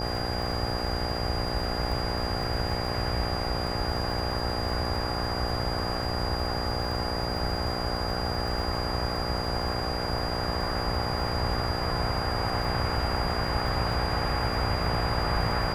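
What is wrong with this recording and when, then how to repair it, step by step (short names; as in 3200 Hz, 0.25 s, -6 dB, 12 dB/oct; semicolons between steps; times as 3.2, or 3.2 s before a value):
buzz 60 Hz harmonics 14 -33 dBFS
crackle 40/s -35 dBFS
tone 4800 Hz -35 dBFS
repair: de-click; notch 4800 Hz, Q 30; de-hum 60 Hz, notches 14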